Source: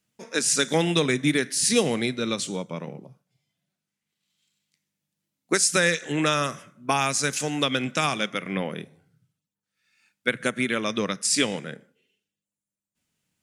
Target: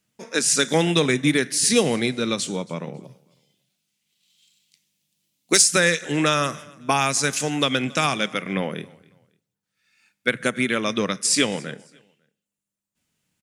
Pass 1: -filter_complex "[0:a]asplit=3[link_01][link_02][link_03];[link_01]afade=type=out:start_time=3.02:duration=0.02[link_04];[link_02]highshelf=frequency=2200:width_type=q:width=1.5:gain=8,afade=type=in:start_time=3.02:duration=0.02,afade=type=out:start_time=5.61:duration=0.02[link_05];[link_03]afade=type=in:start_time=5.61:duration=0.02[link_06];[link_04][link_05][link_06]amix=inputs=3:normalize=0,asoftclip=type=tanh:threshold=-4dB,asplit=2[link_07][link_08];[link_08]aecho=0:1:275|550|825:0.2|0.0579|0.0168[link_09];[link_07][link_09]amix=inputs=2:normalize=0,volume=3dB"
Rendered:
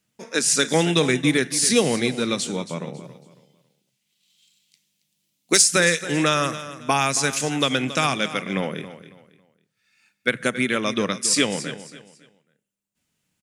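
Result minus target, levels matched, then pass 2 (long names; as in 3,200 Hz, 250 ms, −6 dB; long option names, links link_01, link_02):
echo-to-direct +10.5 dB
-filter_complex "[0:a]asplit=3[link_01][link_02][link_03];[link_01]afade=type=out:start_time=3.02:duration=0.02[link_04];[link_02]highshelf=frequency=2200:width_type=q:width=1.5:gain=8,afade=type=in:start_time=3.02:duration=0.02,afade=type=out:start_time=5.61:duration=0.02[link_05];[link_03]afade=type=in:start_time=5.61:duration=0.02[link_06];[link_04][link_05][link_06]amix=inputs=3:normalize=0,asoftclip=type=tanh:threshold=-4dB,asplit=2[link_07][link_08];[link_08]aecho=0:1:275|550:0.0596|0.0173[link_09];[link_07][link_09]amix=inputs=2:normalize=0,volume=3dB"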